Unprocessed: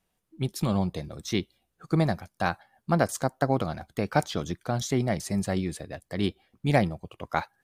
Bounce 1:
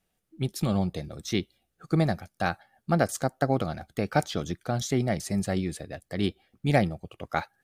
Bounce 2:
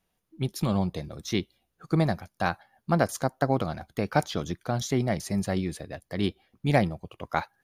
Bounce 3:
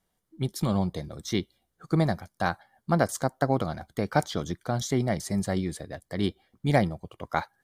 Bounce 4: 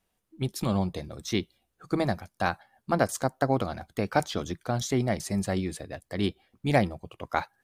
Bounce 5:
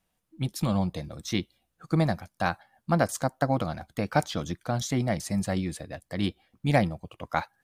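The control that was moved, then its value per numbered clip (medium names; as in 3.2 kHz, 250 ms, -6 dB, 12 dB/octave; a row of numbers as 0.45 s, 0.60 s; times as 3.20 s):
band-stop, frequency: 1 kHz, 8 kHz, 2.6 kHz, 160 Hz, 400 Hz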